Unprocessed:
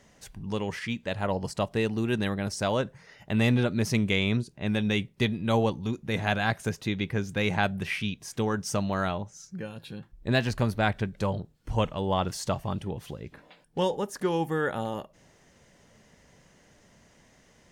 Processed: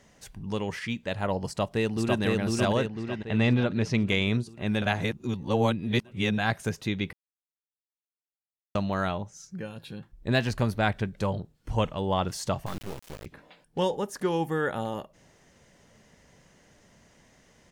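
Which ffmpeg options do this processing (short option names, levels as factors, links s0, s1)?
-filter_complex "[0:a]asplit=2[s0][s1];[s1]afade=t=in:st=1.46:d=0.01,afade=t=out:st=2.22:d=0.01,aecho=0:1:500|1000|1500|2000|2500|3000|3500|4000:0.891251|0.490188|0.269603|0.148282|0.081555|0.0448553|0.0246704|0.0135687[s2];[s0][s2]amix=inputs=2:normalize=0,asettb=1/sr,asplit=3[s3][s4][s5];[s3]atrim=end=2.864[s6];[s4]atrim=start=2.86:end=4.09,asetpts=PTS-STARTPTS,afade=t=in:d=0.004:c=qsin,afade=t=out:st=1.226:d=0.004:c=qsin,lowpass=4600[s7];[s5]atrim=start=4.086[s8];[s6][s7]acrossfade=d=0.004:c1=hsin:c2=qsin[s9];[s9][s8]acrossfade=d=0.004:c1=qsin:c2=hsin,asettb=1/sr,asplit=3[s10][s11][s12];[s10]atrim=end=12.664[s13];[s11]atrim=start=12.66:end=13.26,asetpts=PTS-STARTPTS,afade=t=in:d=0.004:c=qsin,afade=t=out:st=0.596:d=0.004:c=qsin,acrusher=bits=4:dc=4:mix=0:aa=0.000001[s14];[s12]atrim=start=13.256[s15];[s13][s14]acrossfade=d=0.004:c1=hsin:c2=qsin[s16];[s16][s15]acrossfade=d=0.004:c1=qsin:c2=hsin,asplit=5[s17][s18][s19][s20][s21];[s17]atrim=end=4.822[s22];[s18]atrim=start=4.818:end=6.382,asetpts=PTS-STARTPTS,areverse[s23];[s19]atrim=start=6.378:end=7.13,asetpts=PTS-STARTPTS,afade=t=out:st=0.748:d=0.004:c=hsin[s24];[s20]atrim=start=7.13:end=8.75,asetpts=PTS-STARTPTS,volume=0[s25];[s21]atrim=start=8.75,asetpts=PTS-STARTPTS,afade=t=in:d=0.004:c=hsin[s26];[s22][s23]acrossfade=d=0.004:c1=hsin:c2=hsin[s27];[s24][s25][s26]concat=n=3:v=0:a=1[s28];[s27][s28]acrossfade=d=0.004:c1=hsin:c2=hsin"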